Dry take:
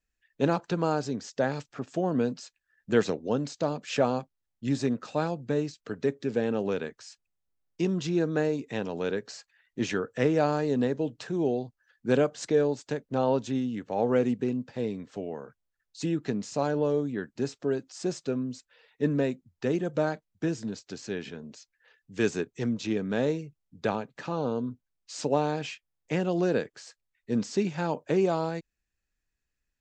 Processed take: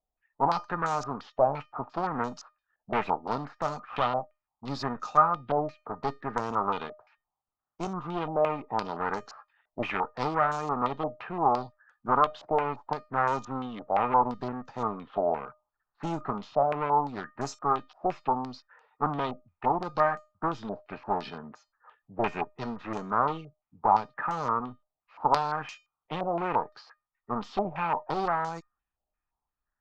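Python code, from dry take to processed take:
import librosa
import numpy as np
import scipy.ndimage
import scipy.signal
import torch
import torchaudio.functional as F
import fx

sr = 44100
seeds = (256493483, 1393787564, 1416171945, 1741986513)

p1 = fx.self_delay(x, sr, depth_ms=0.29)
p2 = fx.env_lowpass(p1, sr, base_hz=1300.0, full_db=-24.0)
p3 = fx.rider(p2, sr, range_db=10, speed_s=0.5)
p4 = p2 + F.gain(torch.from_numpy(p3), -2.0).numpy()
p5 = fx.clip_asym(p4, sr, top_db=-30.0, bottom_db=-11.0)
p6 = fx.band_shelf(p5, sr, hz=1000.0, db=12.5, octaves=1.1)
p7 = fx.comb_fb(p6, sr, f0_hz=610.0, decay_s=0.27, harmonics='all', damping=0.0, mix_pct=70)
y = fx.filter_held_lowpass(p7, sr, hz=5.8, low_hz=650.0, high_hz=6500.0)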